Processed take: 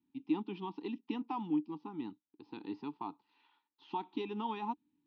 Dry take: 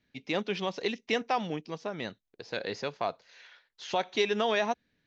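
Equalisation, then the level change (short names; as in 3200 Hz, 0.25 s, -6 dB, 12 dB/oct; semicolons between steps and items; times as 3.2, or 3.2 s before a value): vowel filter u; high shelf 2500 Hz -9 dB; fixed phaser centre 2200 Hz, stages 6; +11.0 dB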